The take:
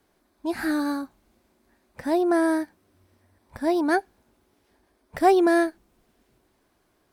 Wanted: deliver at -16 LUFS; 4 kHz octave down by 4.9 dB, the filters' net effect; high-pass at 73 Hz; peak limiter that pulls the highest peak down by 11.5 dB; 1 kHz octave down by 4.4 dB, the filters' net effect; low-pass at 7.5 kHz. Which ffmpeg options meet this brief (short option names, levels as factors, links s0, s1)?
-af "highpass=73,lowpass=7500,equalizer=f=1000:t=o:g=-7,equalizer=f=4000:t=o:g=-5,volume=5.01,alimiter=limit=0.447:level=0:latency=1"